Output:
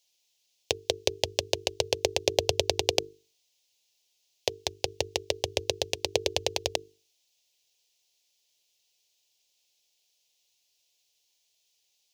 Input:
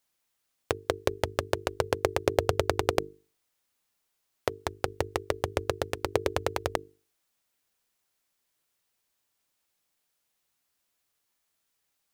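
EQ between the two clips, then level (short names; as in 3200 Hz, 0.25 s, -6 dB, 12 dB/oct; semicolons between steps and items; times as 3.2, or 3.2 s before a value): HPF 79 Hz; band shelf 4100 Hz +12 dB; fixed phaser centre 540 Hz, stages 4; 0.0 dB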